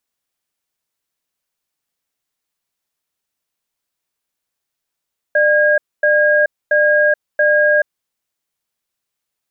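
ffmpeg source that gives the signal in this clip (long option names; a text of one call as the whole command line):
ffmpeg -f lavfi -i "aevalsrc='0.237*(sin(2*PI*598*t)+sin(2*PI*1630*t))*clip(min(mod(t,0.68),0.43-mod(t,0.68))/0.005,0,1)':duration=2.62:sample_rate=44100" out.wav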